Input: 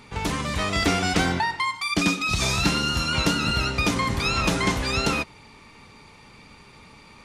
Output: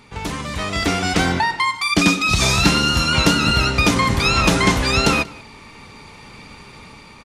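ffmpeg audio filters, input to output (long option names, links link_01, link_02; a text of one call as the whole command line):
ffmpeg -i in.wav -filter_complex "[0:a]asplit=2[link_01][link_02];[link_02]adelay=186.6,volume=-22dB,highshelf=frequency=4000:gain=-4.2[link_03];[link_01][link_03]amix=inputs=2:normalize=0,dynaudnorm=framelen=490:gausssize=5:maxgain=10dB" out.wav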